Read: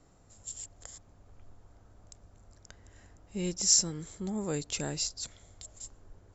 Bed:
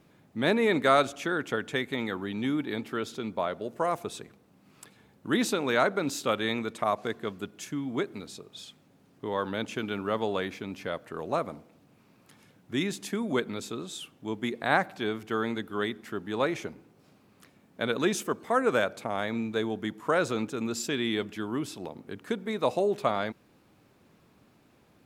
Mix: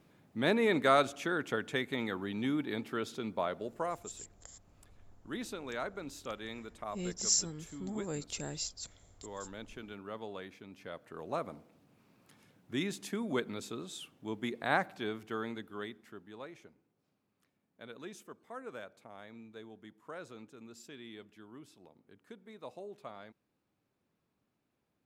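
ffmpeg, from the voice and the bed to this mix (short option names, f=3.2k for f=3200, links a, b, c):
-filter_complex "[0:a]adelay=3600,volume=-5.5dB[a];[1:a]volume=4.5dB,afade=t=out:st=3.58:d=0.53:silence=0.316228,afade=t=in:st=10.7:d=0.94:silence=0.375837,afade=t=out:st=14.82:d=1.63:silence=0.188365[b];[a][b]amix=inputs=2:normalize=0"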